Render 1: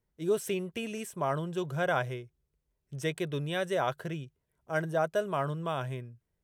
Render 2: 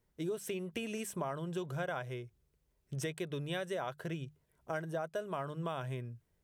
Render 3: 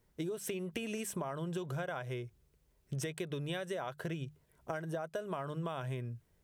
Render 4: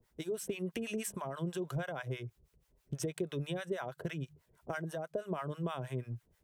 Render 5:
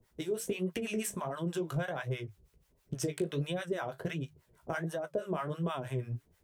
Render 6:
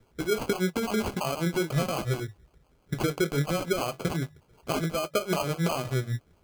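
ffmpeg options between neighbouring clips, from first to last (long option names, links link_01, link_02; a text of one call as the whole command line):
ffmpeg -i in.wav -af "acompressor=threshold=-40dB:ratio=6,bandreject=frequency=50:width_type=h:width=6,bandreject=frequency=100:width_type=h:width=6,bandreject=frequency=150:width_type=h:width=6,bandreject=frequency=200:width_type=h:width=6,volume=4.5dB" out.wav
ffmpeg -i in.wav -af "acompressor=threshold=-40dB:ratio=6,volume=5dB" out.wav
ffmpeg -i in.wav -filter_complex "[0:a]acrossover=split=720[link_01][link_02];[link_01]aeval=exprs='val(0)*(1-1/2+1/2*cos(2*PI*6.2*n/s))':channel_layout=same[link_03];[link_02]aeval=exprs='val(0)*(1-1/2-1/2*cos(2*PI*6.2*n/s))':channel_layout=same[link_04];[link_03][link_04]amix=inputs=2:normalize=0,acrossover=split=120[link_05][link_06];[link_05]aeval=exprs='clip(val(0),-1,0.00335)':channel_layout=same[link_07];[link_07][link_06]amix=inputs=2:normalize=0,volume=5dB" out.wav
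ffmpeg -i in.wav -af "flanger=delay=9.5:depth=9.8:regen=-43:speed=1.4:shape=sinusoidal,volume=7dB" out.wav
ffmpeg -i in.wav -af "acrusher=samples=24:mix=1:aa=0.000001,volume=7dB" out.wav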